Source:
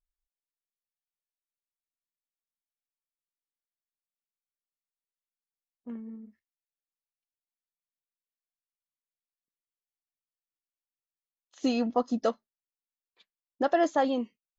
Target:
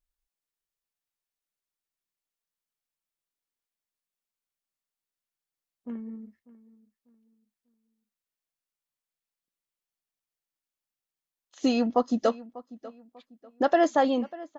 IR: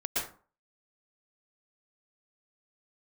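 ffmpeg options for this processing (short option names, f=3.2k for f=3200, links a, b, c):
-filter_complex "[0:a]asplit=2[a][b];[b]adelay=594,lowpass=f=2.5k:p=1,volume=-18.5dB,asplit=2[c][d];[d]adelay=594,lowpass=f=2.5k:p=1,volume=0.33,asplit=2[e][f];[f]adelay=594,lowpass=f=2.5k:p=1,volume=0.33[g];[a][c][e][g]amix=inputs=4:normalize=0,volume=3dB"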